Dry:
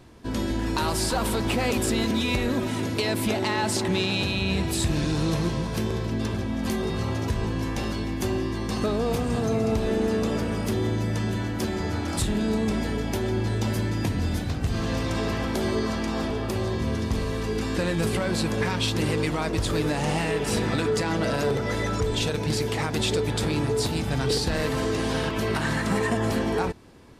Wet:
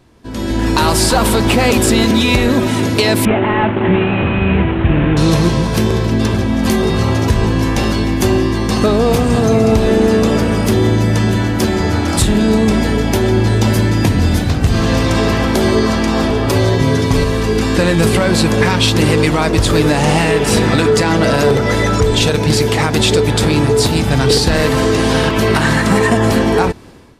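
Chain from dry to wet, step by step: 3.25–5.17 s: CVSD coder 16 kbps; level rider gain up to 15 dB; 16.46–17.24 s: comb 7.1 ms, depth 81%

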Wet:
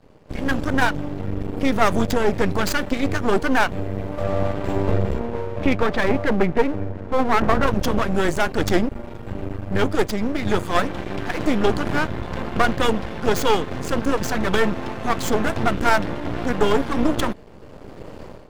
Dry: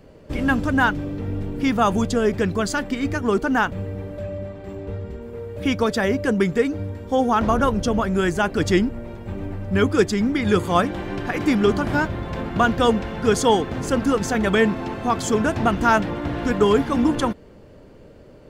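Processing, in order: tracing distortion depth 0.083 ms; 5.19–7.66 s: low-pass 3.5 kHz -> 1.9 kHz 24 dB/octave; level rider gain up to 16.5 dB; half-wave rectifier; trim -1 dB

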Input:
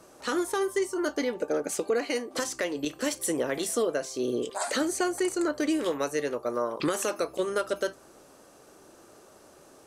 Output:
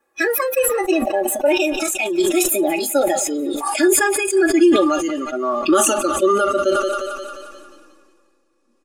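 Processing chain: gliding tape speed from 136% -> 87%; peaking EQ 150 Hz -3 dB 2.6 oct; small resonant body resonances 380/1200/1700/2500 Hz, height 13 dB, ringing for 30 ms; spectral noise reduction 21 dB; in parallel at -6.5 dB: hysteresis with a dead band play -37 dBFS; on the sum: comb 3.6 ms, depth 88%; thinning echo 177 ms, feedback 64%, high-pass 440 Hz, level -19 dB; decay stretcher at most 28 dB/s

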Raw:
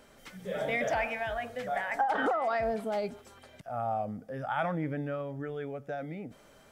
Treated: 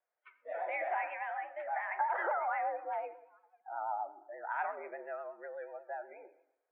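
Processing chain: mistuned SSB +86 Hz 400–2200 Hz; spectral noise reduction 26 dB; plate-style reverb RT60 0.83 s, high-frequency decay 0.9×, DRR 10 dB; vibrato 8.3 Hz 61 cents; trim -4.5 dB

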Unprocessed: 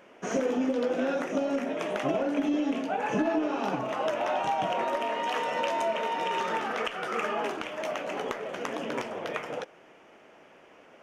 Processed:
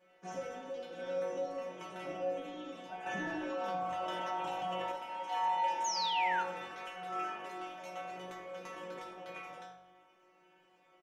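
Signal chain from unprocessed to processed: inharmonic resonator 180 Hz, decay 0.63 s, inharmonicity 0.002; 5.84–6.43 s: painted sound fall 1.3–6.9 kHz -42 dBFS; on a send: frequency-shifting echo 82 ms, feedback 35%, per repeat -48 Hz, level -16.5 dB; on the sum: FDN reverb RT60 0.44 s, low-frequency decay 1×, high-frequency decay 0.85×, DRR 6 dB; 3.06–4.92 s: level flattener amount 70%; trim +3.5 dB

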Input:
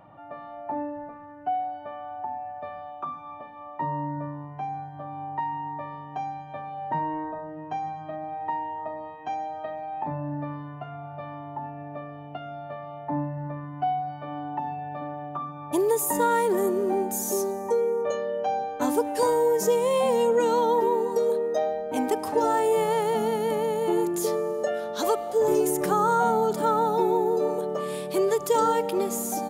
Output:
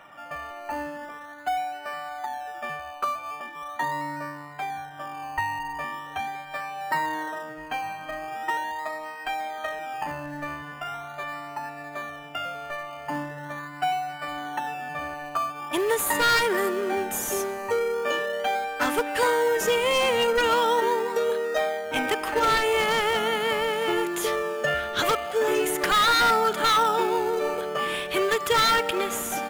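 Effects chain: high-pass 510 Hz 6 dB/octave; high-order bell 2.1 kHz +14.5 dB; wavefolder -16 dBFS; in parallel at -10.5 dB: decimation with a swept rate 19×, swing 60% 0.41 Hz

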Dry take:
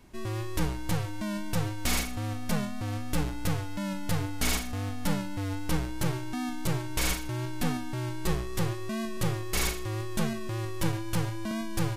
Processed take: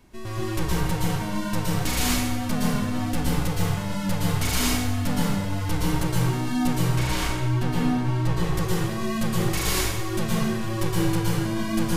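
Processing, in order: 6.82–8.43 s: treble shelf 5.6 kHz -11 dB; plate-style reverb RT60 1 s, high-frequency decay 0.8×, pre-delay 105 ms, DRR -5 dB

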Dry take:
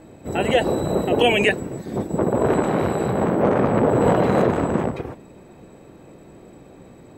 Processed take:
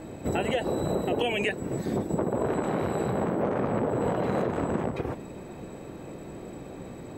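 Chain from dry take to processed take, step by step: compression 6:1, threshold -29 dBFS, peak gain reduction 16 dB; trim +4 dB

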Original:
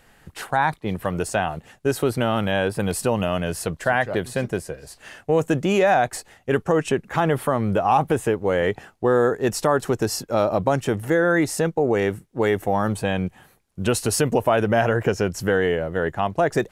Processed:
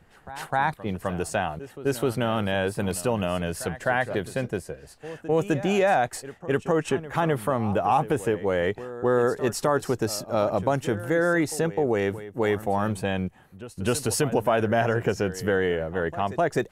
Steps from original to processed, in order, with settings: pre-echo 257 ms -15 dB; tape noise reduction on one side only decoder only; trim -3.5 dB

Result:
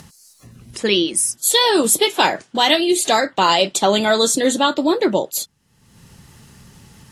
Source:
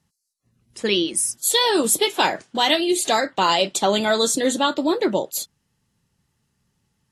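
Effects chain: upward compressor, threshold -30 dBFS; trim +3.5 dB

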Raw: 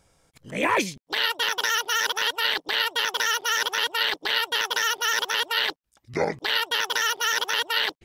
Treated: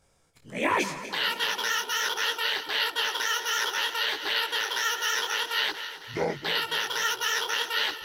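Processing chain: backward echo that repeats 133 ms, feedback 74%, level -11.5 dB; detune thickener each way 48 cents

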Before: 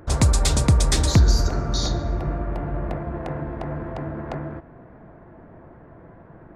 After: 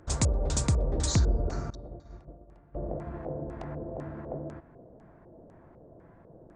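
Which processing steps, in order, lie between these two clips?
1.70–2.75 s: expander -13 dBFS; LFO low-pass square 2 Hz 550–7500 Hz; resampled via 22.05 kHz; trim -9 dB

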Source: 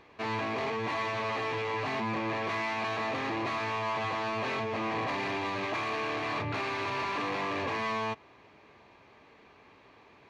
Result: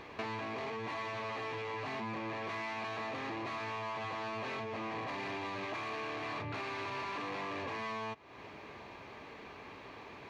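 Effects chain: compression 6:1, threshold -46 dBFS, peak gain reduction 15.5 dB; trim +7.5 dB

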